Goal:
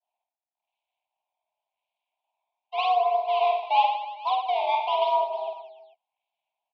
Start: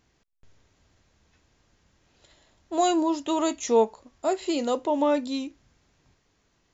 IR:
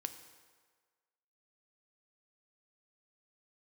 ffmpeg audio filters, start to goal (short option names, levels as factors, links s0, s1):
-filter_complex "[0:a]aeval=exprs='val(0)+0.5*0.0188*sgn(val(0))':c=same,agate=range=0.0224:threshold=0.0501:ratio=3:detection=peak,afwtdn=0.0355,asplit=2[s0][s1];[s1]aeval=exprs='0.0841*(abs(mod(val(0)/0.0841+3,4)-2)-1)':c=same,volume=0.335[s2];[s0][s2]amix=inputs=2:normalize=0,acrusher=samples=20:mix=1:aa=0.000001:lfo=1:lforange=32:lforate=0.91,asuperstop=centerf=1100:order=12:qfactor=0.89,aecho=1:1:50|115|199.5|309.4|452.2:0.631|0.398|0.251|0.158|0.1,highpass=f=280:t=q:w=0.5412,highpass=f=280:t=q:w=1.307,lowpass=f=3200:t=q:w=0.5176,lowpass=f=3200:t=q:w=0.7071,lowpass=f=3200:t=q:w=1.932,afreqshift=380,tremolo=f=250:d=0.182,adynamicequalizer=threshold=0.0158:dfrequency=1500:dqfactor=0.7:tfrequency=1500:tqfactor=0.7:attack=5:release=100:ratio=0.375:range=2:mode=cutabove:tftype=highshelf"